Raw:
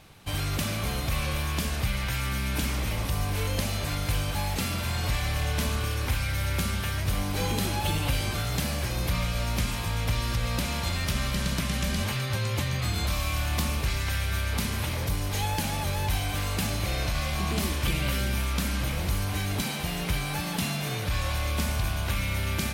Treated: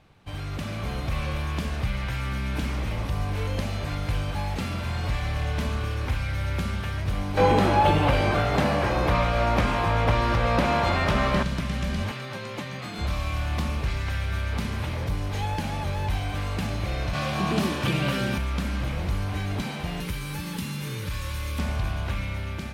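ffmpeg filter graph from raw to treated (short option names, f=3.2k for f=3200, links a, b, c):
-filter_complex "[0:a]asettb=1/sr,asplit=3[a][b][c];[a]atrim=end=7.374[d];[b]atrim=start=7.37:end=11.43,asetpts=PTS-STARTPTS,afade=t=in:d=0.004:c=qsin,afade=t=out:st=4.056:d=0.004:c=qsin,equalizer=f=750:w=0.34:g=13.5,asplit=2[e][f];[f]adelay=20,volume=-10.5dB[g];[e][g]amix=inputs=2:normalize=0,atrim=end_sample=179046[h];[c]atrim=start=11.426[i];[d][h]acrossfade=d=0.004:c1=hsin:c2=qsin[j];[j][i]acrossfade=d=0.004:c1=qsin:c2=hsin,asettb=1/sr,asplit=3[k][l][m];[k]atrim=end=12.114[n];[l]atrim=start=12.11:end=12.99,asetpts=PTS-STARTPTS,afade=t=in:d=0.004:c=qsin,afade=t=out:st=0.876:d=0.004:c=qsin,highpass=f=160:w=0.5412,highpass=f=160:w=1.3066,aeval=exprs='sgn(val(0))*max(abs(val(0))-0.00316,0)':c=same[o];[m]atrim=start=12.986[p];[n][o]acrossfade=d=0.004:c1=hsin:c2=qsin[q];[q][p]acrossfade=d=0.004:c1=qsin:c2=hsin,asettb=1/sr,asplit=3[r][s][t];[r]atrim=end=17.134[u];[s]atrim=start=17.13:end=18.38,asetpts=PTS-STARTPTS,afade=t=in:d=0.004:c=qsin,afade=t=out:st=1.246:d=0.004:c=qsin,highpass=f=110:w=0.5412,highpass=f=110:w=1.3066,bandreject=f=2.1k:w=12,acontrast=36[v];[t]atrim=start=18.376[w];[u][v]acrossfade=d=0.004:c1=hsin:c2=qsin[x];[x][w]acrossfade=d=0.004:c1=qsin:c2=hsin,asettb=1/sr,asplit=3[y][z][aa];[y]atrim=end=20.004[ab];[z]atrim=start=20:end=21.59,asetpts=PTS-STARTPTS,afade=t=in:d=0.004:c=qsin,afade=t=out:st=1.586:d=0.004:c=qsin,aemphasis=mode=production:type=50kf,acrossover=split=450|1200|6300[ac][ad][ae][af];[ac]acompressor=threshold=-30dB:ratio=3[ag];[ad]acompressor=threshold=-48dB:ratio=3[ah];[ae]acompressor=threshold=-36dB:ratio=3[ai];[af]acompressor=threshold=-30dB:ratio=3[aj];[ag][ah][ai][aj]amix=inputs=4:normalize=0,asuperstop=centerf=690:order=8:qfactor=3.6[ak];[aa]atrim=start=21.586[al];[ab][ak]acrossfade=d=0.004:c1=hsin:c2=qsin[am];[am][al]acrossfade=d=0.004:c1=qsin:c2=hsin,aemphasis=mode=reproduction:type=75kf,dynaudnorm=f=160:g=9:m=5dB,volume=-4dB"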